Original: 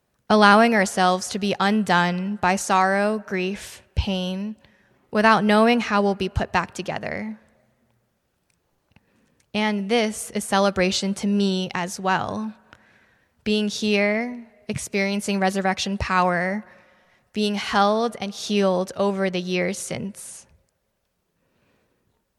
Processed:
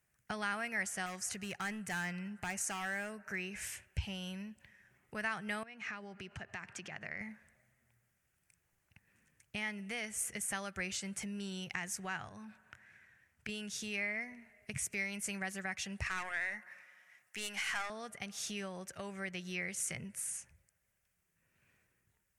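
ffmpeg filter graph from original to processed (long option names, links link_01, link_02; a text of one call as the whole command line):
ffmpeg -i in.wav -filter_complex "[0:a]asettb=1/sr,asplit=3[link_01][link_02][link_03];[link_01]atrim=end=1.064[link_04];[link_02]atrim=start=1.06:end=3.66,asetpts=PTS-STARTPTS,afade=type=in:duration=0.004:curve=qsin,afade=type=out:start_time=2.596:duration=0.004:curve=qsin,bandreject=frequency=3400:width=9.7,asoftclip=type=hard:threshold=-16.5dB[link_05];[link_03]atrim=start=3.656[link_06];[link_04][link_05]acrossfade=duration=0.004:curve1=hsin:curve2=qsin[link_07];[link_07][link_06]acrossfade=duration=0.004:curve1=qsin:curve2=hsin,asettb=1/sr,asplit=3[link_08][link_09][link_10];[link_08]atrim=end=5.634[link_11];[link_09]atrim=start=5.63:end=7.21,asetpts=PTS-STARTPTS,afade=type=in:duration=0.004:curve=qsin,afade=type=out:start_time=1.576:duration=0.004:curve=qsin,acompressor=threshold=-30dB:ratio=5:attack=3.2:release=140:knee=1:detection=peak,highpass=110,lowpass=5700[link_12];[link_10]atrim=start=7.206[link_13];[link_11][link_12]acrossfade=duration=0.004:curve1=hsin:curve2=qsin[link_14];[link_14][link_13]acrossfade=duration=0.004:curve1=qsin:curve2=hsin,asettb=1/sr,asplit=3[link_15][link_16][link_17];[link_15]atrim=end=12.284[link_18];[link_16]atrim=start=12.28:end=13.49,asetpts=PTS-STARTPTS,afade=type=in:duration=0.004:curve=qsin,afade=type=out:start_time=1.206:duration=0.004:curve=qsin,highpass=51,acompressor=threshold=-33dB:ratio=2.5:attack=3.2:release=140:knee=1:detection=peak,highshelf=frequency=7700:gain=-4.5[link_19];[link_17]atrim=start=13.486[link_20];[link_18][link_19]acrossfade=duration=0.004:curve1=hsin:curve2=qsin[link_21];[link_21][link_20]acrossfade=duration=0.004:curve1=qsin:curve2=hsin,asettb=1/sr,asplit=3[link_22][link_23][link_24];[link_22]atrim=end=16.064[link_25];[link_23]atrim=start=16.06:end=17.9,asetpts=PTS-STARTPTS,afade=type=in:duration=0.004:curve=qsin,afade=type=out:start_time=1.836:duration=0.004:curve=qsin,highpass=frequency=760:poles=1,acontrast=76,aeval=exprs='(tanh(3.55*val(0)+0.75)-tanh(0.75))/3.55':channel_layout=same[link_26];[link_24]atrim=start=17.896[link_27];[link_25][link_26]acrossfade=duration=0.004:curve1=hsin:curve2=qsin[link_28];[link_28][link_27]acrossfade=duration=0.004:curve1=qsin:curve2=hsin,lowshelf=frequency=72:gain=-8.5,acompressor=threshold=-31dB:ratio=2.5,equalizer=frequency=250:width_type=o:width=1:gain=-11,equalizer=frequency=500:width_type=o:width=1:gain=-11,equalizer=frequency=1000:width_type=o:width=1:gain=-9,equalizer=frequency=2000:width_type=o:width=1:gain=6,equalizer=frequency=4000:width_type=o:width=1:gain=-12,equalizer=frequency=8000:width_type=o:width=1:gain=4,volume=-3dB" out.wav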